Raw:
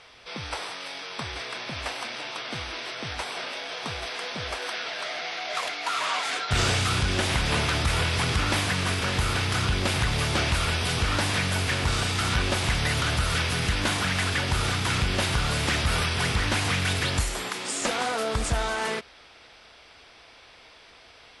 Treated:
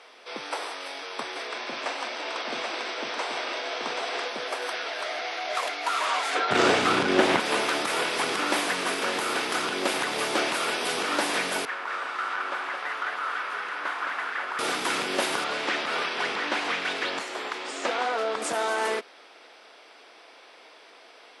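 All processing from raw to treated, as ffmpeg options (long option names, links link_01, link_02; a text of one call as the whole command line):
ffmpeg -i in.wav -filter_complex "[0:a]asettb=1/sr,asplit=3[link_01][link_02][link_03];[link_01]atrim=end=1.474[link_04];[link_02]atrim=start=1.47:end=4.28,asetpts=PTS-STARTPTS,afade=type=in:duration=0.004:curve=qsin,afade=type=out:start_time=2.806:duration=0.004:curve=qsin,lowpass=frequency=7900:width=0.5412,lowpass=frequency=7900:width=1.3066,aecho=1:1:44|144|781:0.355|0.266|0.668,atrim=end_sample=123921[link_05];[link_03]atrim=start=4.276[link_06];[link_04][link_05]acrossfade=duration=0.004:curve1=hsin:curve2=qsin[link_07];[link_07][link_06]acrossfade=duration=0.004:curve1=qsin:curve2=hsin,asettb=1/sr,asplit=3[link_08][link_09][link_10];[link_08]atrim=end=6.354[link_11];[link_09]atrim=start=6.35:end=7.4,asetpts=PTS-STARTPTS,afade=type=in:duration=0.004:curve=qsin,afade=type=out:start_time=1.046:duration=0.004:curve=qsin,aemphasis=mode=reproduction:type=bsi,acontrast=32[link_12];[link_10]atrim=start=7.396[link_13];[link_11][link_12]acrossfade=duration=0.004:curve1=hsin:curve2=qsin[link_14];[link_14][link_13]acrossfade=duration=0.004:curve1=qsin:curve2=hsin,asettb=1/sr,asplit=3[link_15][link_16][link_17];[link_15]atrim=end=11.654[link_18];[link_16]atrim=start=11.65:end=14.59,asetpts=PTS-STARTPTS,afade=type=in:duration=0.004:curve=qsin,afade=type=out:start_time=2.936:duration=0.004:curve=qsin,bandpass=frequency=1300:width_type=q:width=1.9,aecho=1:1:216:0.631,atrim=end_sample=129654[link_19];[link_17]atrim=start=14.586[link_20];[link_18][link_19]acrossfade=duration=0.004:curve1=hsin:curve2=qsin[link_21];[link_21][link_20]acrossfade=duration=0.004:curve1=qsin:curve2=hsin,asettb=1/sr,asplit=3[link_22][link_23][link_24];[link_22]atrim=end=15.444[link_25];[link_23]atrim=start=15.44:end=18.42,asetpts=PTS-STARTPTS,afade=type=in:duration=0.004:curve=qsin,afade=type=out:start_time=2.976:duration=0.004:curve=qsin,lowpass=4400,lowshelf=frequency=500:gain=-5[link_26];[link_24]atrim=start=18.416[link_27];[link_25][link_26]acrossfade=duration=0.004:curve1=hsin:curve2=qsin[link_28];[link_28][link_27]acrossfade=duration=0.004:curve1=qsin:curve2=hsin,highpass=frequency=290:width=0.5412,highpass=frequency=290:width=1.3066,equalizer=frequency=4400:width=0.37:gain=-6,volume=4dB" out.wav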